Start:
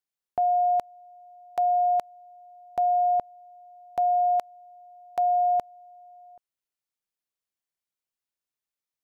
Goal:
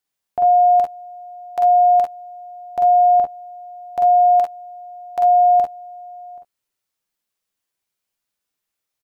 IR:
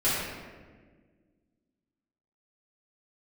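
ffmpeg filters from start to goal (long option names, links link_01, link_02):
-filter_complex "[0:a]alimiter=limit=-22.5dB:level=0:latency=1,asplit=2[link_01][link_02];[link_02]aecho=0:1:10|45|55|69:0.2|0.708|0.531|0.178[link_03];[link_01][link_03]amix=inputs=2:normalize=0,volume=7dB"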